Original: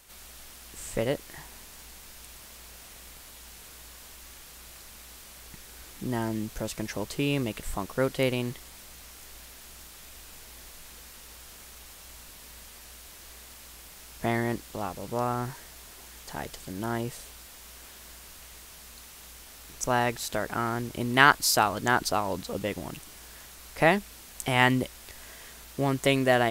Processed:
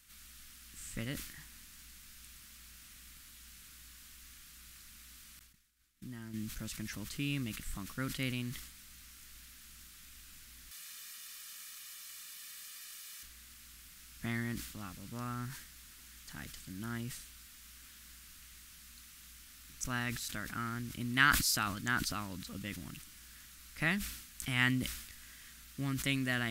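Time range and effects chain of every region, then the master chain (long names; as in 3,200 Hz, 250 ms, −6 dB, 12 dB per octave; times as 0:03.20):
0:05.39–0:06.34: downward expander −34 dBFS + downward compressor 2.5 to 1, threshold −36 dBFS
0:10.71–0:13.23: high-pass filter 200 Hz + tilt shelving filter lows −5.5 dB, about 800 Hz + comb filter 1.7 ms, depth 58%
whole clip: flat-topped bell 600 Hz −15.5 dB; level that may fall only so fast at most 66 dB per second; level −7 dB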